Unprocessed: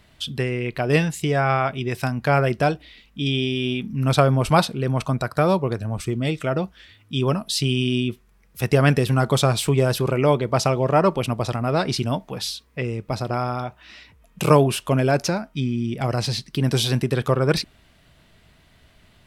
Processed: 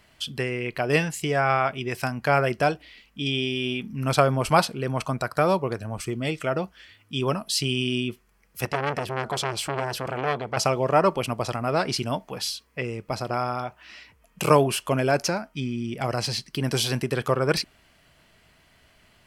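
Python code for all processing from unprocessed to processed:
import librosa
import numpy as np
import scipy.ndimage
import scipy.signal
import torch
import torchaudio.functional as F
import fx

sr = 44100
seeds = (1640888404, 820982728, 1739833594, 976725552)

y = fx.chain(x, sr, fx.high_shelf(hz=8100.0, db=-10.0),
    fx.transformer_sat(knee_hz=1700.0), at=(8.65, 10.57))
y = fx.low_shelf(y, sr, hz=310.0, db=-8.0)
y = fx.notch(y, sr, hz=3700.0, q=7.7)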